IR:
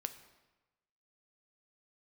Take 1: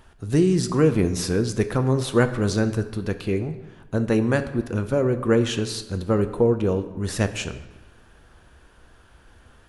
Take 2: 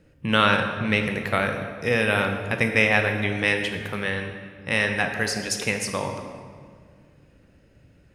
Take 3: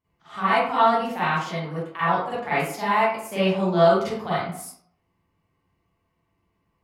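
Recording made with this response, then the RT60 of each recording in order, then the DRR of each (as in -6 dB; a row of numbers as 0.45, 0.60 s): 1; 1.1, 2.0, 0.65 s; 8.5, 4.5, -13.0 dB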